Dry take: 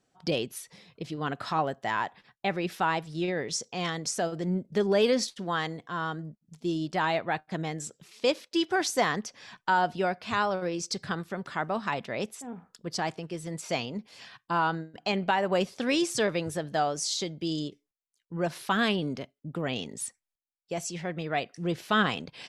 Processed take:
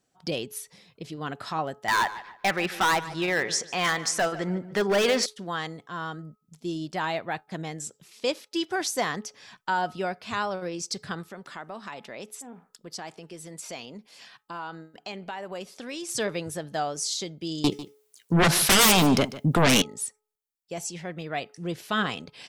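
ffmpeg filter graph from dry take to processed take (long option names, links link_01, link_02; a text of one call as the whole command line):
ffmpeg -i in.wav -filter_complex "[0:a]asettb=1/sr,asplit=3[link_01][link_02][link_03];[link_01]atrim=end=1.884[link_04];[link_02]atrim=start=1.88:end=5.26,asetpts=PTS-STARTPTS,afade=type=in:duration=0.004:curve=qsin,afade=type=out:start_time=3.376:duration=0.004:curve=qsin,equalizer=frequency=1500:width_type=o:width=2.4:gain=14.5,volume=17dB,asoftclip=hard,volume=-17dB,asplit=2[link_05][link_06];[link_06]adelay=147,lowpass=frequency=3500:poles=1,volume=-15dB,asplit=2[link_07][link_08];[link_08]adelay=147,lowpass=frequency=3500:poles=1,volume=0.33,asplit=2[link_09][link_10];[link_10]adelay=147,lowpass=frequency=3500:poles=1,volume=0.33[link_11];[link_05][link_07][link_09][link_11]amix=inputs=4:normalize=0,atrim=end_sample=149058[link_12];[link_03]atrim=start=5.256[link_13];[link_04][link_12]acrossfade=duration=0.004:curve1=hsin:curve2=qsin[link_14];[link_14][link_13]acrossfade=duration=0.004:curve1=qsin:curve2=hsin,asettb=1/sr,asplit=3[link_15][link_16][link_17];[link_15]atrim=end=11.284[link_18];[link_16]atrim=start=11.28:end=16.09,asetpts=PTS-STARTPTS,afade=type=in:duration=0.004:curve=qsin,afade=type=out:start_time=4.806:duration=0.004:curve=qsin,acompressor=threshold=-36dB:ratio=2:attack=3.2:release=140:knee=1:detection=peak,equalizer=frequency=81:width_type=o:width=1.2:gain=-15[link_19];[link_17]atrim=start=16.086[link_20];[link_18][link_19]acrossfade=duration=0.004:curve1=hsin:curve2=qsin[link_21];[link_21][link_20]acrossfade=duration=0.004:curve1=qsin:curve2=hsin,asettb=1/sr,asplit=3[link_22][link_23][link_24];[link_22]atrim=end=17.644[link_25];[link_23]atrim=start=17.64:end=19.82,asetpts=PTS-STARTPTS,afade=type=in:duration=0.004:curve=qsin,afade=type=out:start_time=2.176:duration=0.004:curve=qsin,highpass=54,aeval=exprs='0.211*sin(PI/2*6.31*val(0)/0.211)':channel_layout=same,aecho=1:1:148:0.158,atrim=end_sample=96138[link_26];[link_24]atrim=start=19.816[link_27];[link_25][link_26]acrossfade=duration=0.004:curve1=hsin:curve2=qsin[link_28];[link_28][link_27]acrossfade=duration=0.004:curve1=qsin:curve2=hsin,highshelf=frequency=7100:gain=8.5,bandreject=frequency=426.2:width_type=h:width=4,bandreject=frequency=852.4:width_type=h:width=4,bandreject=frequency=1278.6:width_type=h:width=4,volume=-2dB" out.wav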